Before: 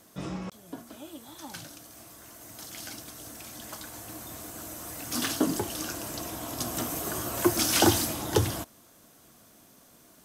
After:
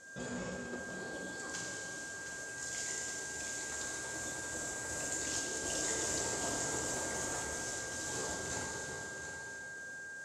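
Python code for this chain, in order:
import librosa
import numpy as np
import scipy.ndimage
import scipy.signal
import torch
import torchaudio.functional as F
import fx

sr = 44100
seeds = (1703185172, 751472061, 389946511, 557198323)

p1 = fx.pitch_trill(x, sr, semitones=4.5, every_ms=188)
p2 = fx.peak_eq(p1, sr, hz=530.0, db=11.5, octaves=0.28)
p3 = fx.over_compress(p2, sr, threshold_db=-35.0, ratio=-1.0)
p4 = p3 + 10.0 ** (-46.0 / 20.0) * np.sin(2.0 * np.pi * 1600.0 * np.arange(len(p3)) / sr)
p5 = fx.ladder_lowpass(p4, sr, hz=7700.0, resonance_pct=70)
p6 = p5 + fx.echo_single(p5, sr, ms=720, db=-9.5, dry=0)
y = fx.rev_plate(p6, sr, seeds[0], rt60_s=3.3, hf_ratio=0.9, predelay_ms=0, drr_db=-2.5)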